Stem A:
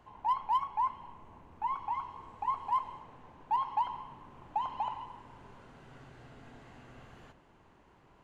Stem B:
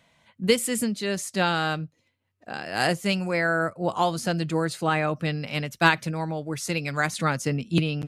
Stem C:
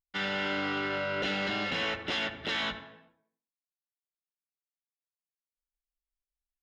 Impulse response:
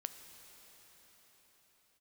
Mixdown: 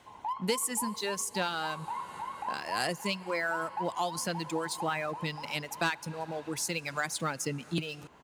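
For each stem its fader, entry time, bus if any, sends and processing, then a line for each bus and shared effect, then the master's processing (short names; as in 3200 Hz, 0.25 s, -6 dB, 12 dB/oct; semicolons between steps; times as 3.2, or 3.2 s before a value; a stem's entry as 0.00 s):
+2.5 dB, 0.00 s, no send, echo send -5.5 dB, dry
-1.0 dB, 0.00 s, send -11 dB, no echo send, reverb removal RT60 1.7 s; sample leveller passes 1
-17.5 dB, 1.75 s, no send, no echo send, Chebyshev band-pass 780–2300 Hz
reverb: on, pre-delay 5 ms
echo: feedback echo 0.576 s, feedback 55%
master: HPF 63 Hz; tone controls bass -4 dB, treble +6 dB; compressor 2:1, threshold -38 dBFS, peak gain reduction 15 dB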